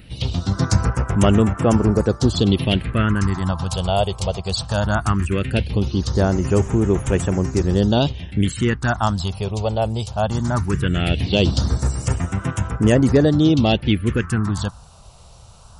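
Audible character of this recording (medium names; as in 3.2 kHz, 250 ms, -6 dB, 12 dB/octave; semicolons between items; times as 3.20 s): phasing stages 4, 0.18 Hz, lowest notch 280–4200 Hz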